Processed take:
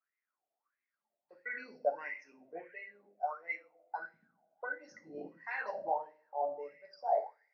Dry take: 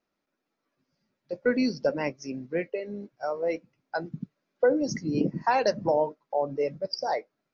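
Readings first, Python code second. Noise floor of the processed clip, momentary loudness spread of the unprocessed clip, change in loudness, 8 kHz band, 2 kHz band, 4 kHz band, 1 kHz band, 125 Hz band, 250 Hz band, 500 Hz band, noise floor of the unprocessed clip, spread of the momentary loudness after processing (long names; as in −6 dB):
below −85 dBFS, 12 LU, −11.0 dB, can't be measured, −5.0 dB, below −25 dB, −6.5 dB, −32.0 dB, −27.0 dB, −12.5 dB, −83 dBFS, 15 LU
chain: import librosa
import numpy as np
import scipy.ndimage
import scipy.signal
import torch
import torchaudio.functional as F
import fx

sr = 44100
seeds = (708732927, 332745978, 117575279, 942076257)

y = fx.rev_double_slope(x, sr, seeds[0], early_s=0.44, late_s=2.0, knee_db=-28, drr_db=0.5)
y = fx.wah_lfo(y, sr, hz=1.5, low_hz=650.0, high_hz=2100.0, q=12.0)
y = F.gain(torch.from_numpy(y), 3.0).numpy()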